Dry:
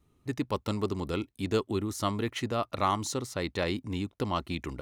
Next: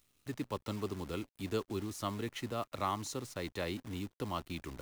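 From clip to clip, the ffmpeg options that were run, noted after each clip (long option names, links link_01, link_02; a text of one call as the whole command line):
ffmpeg -i in.wav -filter_complex "[0:a]acrossover=split=230|600|2100[link_01][link_02][link_03][link_04];[link_04]acompressor=mode=upward:threshold=-50dB:ratio=2.5[link_05];[link_01][link_02][link_03][link_05]amix=inputs=4:normalize=0,acrusher=bits=8:dc=4:mix=0:aa=0.000001,volume=-7.5dB" out.wav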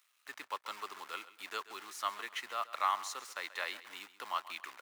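ffmpeg -i in.wav -af "highpass=1000,equalizer=frequency=1400:width_type=o:width=2.1:gain=9,aecho=1:1:134|268|402:0.158|0.0555|0.0194,volume=-1dB" out.wav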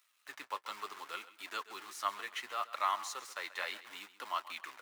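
ffmpeg -i in.wav -af "flanger=delay=3:depth=7.5:regen=-36:speed=0.69:shape=sinusoidal,volume=3.5dB" out.wav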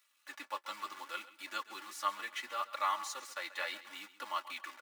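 ffmpeg -i in.wav -af "aecho=1:1:3.5:0.95,volume=-2.5dB" out.wav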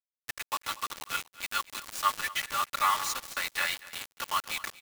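ffmpeg -i in.wav -af "highpass=960,acrusher=bits=6:mix=0:aa=0.000001,aecho=1:1:238:0.112,volume=9dB" out.wav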